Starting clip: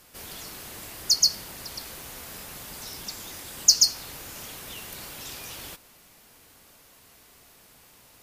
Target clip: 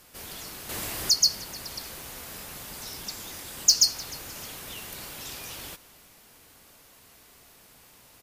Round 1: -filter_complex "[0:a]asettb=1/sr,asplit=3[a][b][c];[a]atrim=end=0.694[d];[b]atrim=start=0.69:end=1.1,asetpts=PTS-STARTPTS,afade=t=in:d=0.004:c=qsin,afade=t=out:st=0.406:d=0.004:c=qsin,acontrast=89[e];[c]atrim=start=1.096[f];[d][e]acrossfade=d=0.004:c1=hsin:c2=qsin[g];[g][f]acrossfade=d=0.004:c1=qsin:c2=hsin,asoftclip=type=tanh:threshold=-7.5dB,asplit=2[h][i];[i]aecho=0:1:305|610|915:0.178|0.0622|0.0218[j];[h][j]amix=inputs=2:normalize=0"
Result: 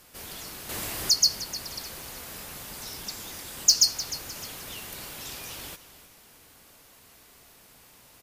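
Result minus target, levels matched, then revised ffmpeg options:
echo-to-direct +7 dB
-filter_complex "[0:a]asettb=1/sr,asplit=3[a][b][c];[a]atrim=end=0.694[d];[b]atrim=start=0.69:end=1.1,asetpts=PTS-STARTPTS,afade=t=in:d=0.004:c=qsin,afade=t=out:st=0.406:d=0.004:c=qsin,acontrast=89[e];[c]atrim=start=1.096[f];[d][e]acrossfade=d=0.004:c1=hsin:c2=qsin[g];[g][f]acrossfade=d=0.004:c1=qsin:c2=hsin,asoftclip=type=tanh:threshold=-7.5dB,asplit=2[h][i];[i]aecho=0:1:305|610:0.0794|0.0278[j];[h][j]amix=inputs=2:normalize=0"

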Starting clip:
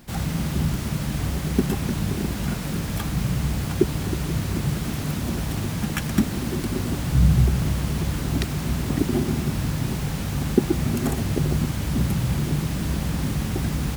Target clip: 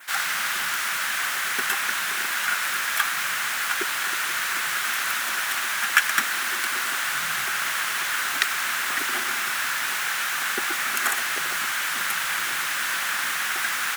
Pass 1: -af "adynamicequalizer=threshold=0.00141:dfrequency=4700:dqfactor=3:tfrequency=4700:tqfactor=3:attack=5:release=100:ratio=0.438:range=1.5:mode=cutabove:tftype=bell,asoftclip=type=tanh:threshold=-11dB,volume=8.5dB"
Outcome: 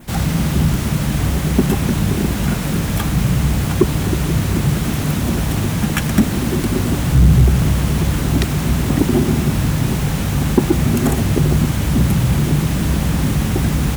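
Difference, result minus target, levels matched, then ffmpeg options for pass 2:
2000 Hz band -13.5 dB
-af "adynamicequalizer=threshold=0.00141:dfrequency=4700:dqfactor=3:tfrequency=4700:tqfactor=3:attack=5:release=100:ratio=0.438:range=1.5:mode=cutabove:tftype=bell,highpass=f=1.5k:t=q:w=2.7,asoftclip=type=tanh:threshold=-11dB,volume=8.5dB"

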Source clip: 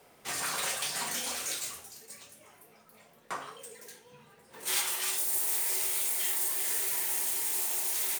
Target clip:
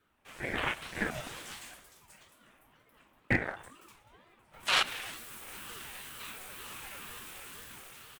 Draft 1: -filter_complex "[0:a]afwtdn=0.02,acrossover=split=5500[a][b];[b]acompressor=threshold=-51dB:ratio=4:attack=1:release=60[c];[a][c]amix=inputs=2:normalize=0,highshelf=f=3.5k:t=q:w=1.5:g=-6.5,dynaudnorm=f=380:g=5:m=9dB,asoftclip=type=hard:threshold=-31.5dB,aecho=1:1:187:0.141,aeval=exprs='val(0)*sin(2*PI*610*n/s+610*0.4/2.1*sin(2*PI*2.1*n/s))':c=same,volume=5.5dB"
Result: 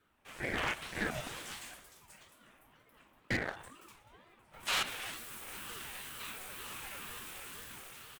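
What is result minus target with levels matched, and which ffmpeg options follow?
hard clip: distortion +15 dB
-filter_complex "[0:a]afwtdn=0.02,acrossover=split=5500[a][b];[b]acompressor=threshold=-51dB:ratio=4:attack=1:release=60[c];[a][c]amix=inputs=2:normalize=0,highshelf=f=3.5k:t=q:w=1.5:g=-6.5,dynaudnorm=f=380:g=5:m=9dB,asoftclip=type=hard:threshold=-20.5dB,aecho=1:1:187:0.141,aeval=exprs='val(0)*sin(2*PI*610*n/s+610*0.4/2.1*sin(2*PI*2.1*n/s))':c=same,volume=5.5dB"

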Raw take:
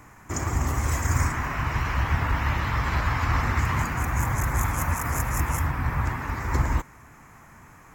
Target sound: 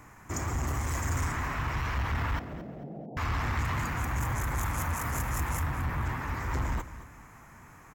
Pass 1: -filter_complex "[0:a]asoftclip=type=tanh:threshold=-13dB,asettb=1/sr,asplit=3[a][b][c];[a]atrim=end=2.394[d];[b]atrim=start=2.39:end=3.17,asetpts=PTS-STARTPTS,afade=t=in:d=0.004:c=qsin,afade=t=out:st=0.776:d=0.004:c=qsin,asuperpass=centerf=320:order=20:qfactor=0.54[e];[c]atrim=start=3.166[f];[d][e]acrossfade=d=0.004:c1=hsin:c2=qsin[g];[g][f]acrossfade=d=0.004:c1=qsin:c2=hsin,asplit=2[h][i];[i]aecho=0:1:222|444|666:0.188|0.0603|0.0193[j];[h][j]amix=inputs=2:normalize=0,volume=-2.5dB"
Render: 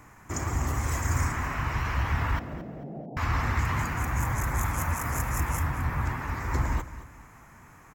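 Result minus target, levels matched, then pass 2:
soft clip: distortion -13 dB
-filter_complex "[0:a]asoftclip=type=tanh:threshold=-23dB,asettb=1/sr,asplit=3[a][b][c];[a]atrim=end=2.394[d];[b]atrim=start=2.39:end=3.17,asetpts=PTS-STARTPTS,afade=t=in:d=0.004:c=qsin,afade=t=out:st=0.776:d=0.004:c=qsin,asuperpass=centerf=320:order=20:qfactor=0.54[e];[c]atrim=start=3.166[f];[d][e]acrossfade=d=0.004:c1=hsin:c2=qsin[g];[g][f]acrossfade=d=0.004:c1=qsin:c2=hsin,asplit=2[h][i];[i]aecho=0:1:222|444|666:0.188|0.0603|0.0193[j];[h][j]amix=inputs=2:normalize=0,volume=-2.5dB"

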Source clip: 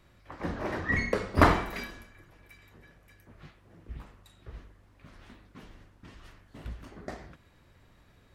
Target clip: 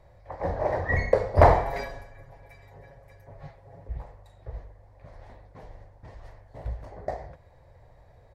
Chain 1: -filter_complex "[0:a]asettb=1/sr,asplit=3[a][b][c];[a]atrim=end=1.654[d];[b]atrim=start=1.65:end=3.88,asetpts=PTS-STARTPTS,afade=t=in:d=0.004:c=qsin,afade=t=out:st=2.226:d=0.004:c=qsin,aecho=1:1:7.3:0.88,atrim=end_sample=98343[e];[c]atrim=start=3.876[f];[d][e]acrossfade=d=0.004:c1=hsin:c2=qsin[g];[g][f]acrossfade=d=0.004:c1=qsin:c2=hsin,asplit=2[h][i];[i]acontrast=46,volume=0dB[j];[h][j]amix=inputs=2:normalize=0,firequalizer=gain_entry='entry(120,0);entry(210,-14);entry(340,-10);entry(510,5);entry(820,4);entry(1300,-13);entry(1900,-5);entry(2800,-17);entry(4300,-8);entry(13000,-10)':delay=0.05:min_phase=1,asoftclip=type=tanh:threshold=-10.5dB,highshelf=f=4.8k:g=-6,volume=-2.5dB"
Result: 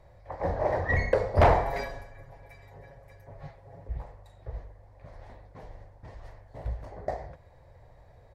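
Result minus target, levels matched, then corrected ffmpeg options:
soft clip: distortion +12 dB
-filter_complex "[0:a]asettb=1/sr,asplit=3[a][b][c];[a]atrim=end=1.654[d];[b]atrim=start=1.65:end=3.88,asetpts=PTS-STARTPTS,afade=t=in:d=0.004:c=qsin,afade=t=out:st=2.226:d=0.004:c=qsin,aecho=1:1:7.3:0.88,atrim=end_sample=98343[e];[c]atrim=start=3.876[f];[d][e]acrossfade=d=0.004:c1=hsin:c2=qsin[g];[g][f]acrossfade=d=0.004:c1=qsin:c2=hsin,asplit=2[h][i];[i]acontrast=46,volume=0dB[j];[h][j]amix=inputs=2:normalize=0,firequalizer=gain_entry='entry(120,0);entry(210,-14);entry(340,-10);entry(510,5);entry(820,4);entry(1300,-13);entry(1900,-5);entry(2800,-17);entry(4300,-8);entry(13000,-10)':delay=0.05:min_phase=1,asoftclip=type=tanh:threshold=0dB,highshelf=f=4.8k:g=-6,volume=-2.5dB"

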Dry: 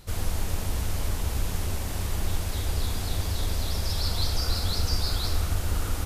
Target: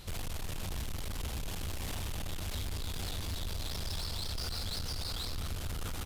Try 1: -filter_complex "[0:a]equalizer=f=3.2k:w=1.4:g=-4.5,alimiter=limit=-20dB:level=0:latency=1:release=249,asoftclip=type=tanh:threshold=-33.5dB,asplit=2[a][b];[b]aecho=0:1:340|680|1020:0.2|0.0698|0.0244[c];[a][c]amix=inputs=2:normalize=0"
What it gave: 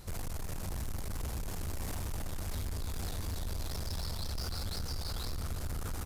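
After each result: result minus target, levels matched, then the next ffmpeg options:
echo 0.113 s late; 4000 Hz band -4.0 dB
-filter_complex "[0:a]equalizer=f=3.2k:w=1.4:g=-4.5,alimiter=limit=-20dB:level=0:latency=1:release=249,asoftclip=type=tanh:threshold=-33.5dB,asplit=2[a][b];[b]aecho=0:1:227|454|681:0.2|0.0698|0.0244[c];[a][c]amix=inputs=2:normalize=0"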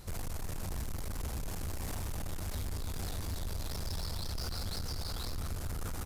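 4000 Hz band -3.5 dB
-filter_complex "[0:a]equalizer=f=3.2k:w=1.4:g=5.5,alimiter=limit=-20dB:level=0:latency=1:release=249,asoftclip=type=tanh:threshold=-33.5dB,asplit=2[a][b];[b]aecho=0:1:227|454|681:0.2|0.0698|0.0244[c];[a][c]amix=inputs=2:normalize=0"

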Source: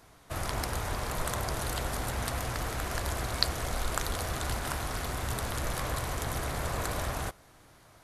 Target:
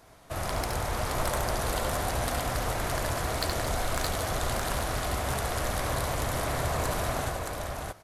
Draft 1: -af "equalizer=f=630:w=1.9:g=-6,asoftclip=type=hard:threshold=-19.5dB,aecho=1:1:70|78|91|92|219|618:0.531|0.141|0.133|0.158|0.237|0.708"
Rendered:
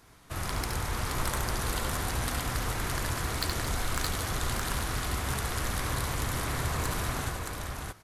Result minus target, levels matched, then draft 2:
500 Hz band -5.5 dB
-af "equalizer=f=630:w=1.9:g=4.5,asoftclip=type=hard:threshold=-19.5dB,aecho=1:1:70|78|91|92|219|618:0.531|0.141|0.133|0.158|0.237|0.708"

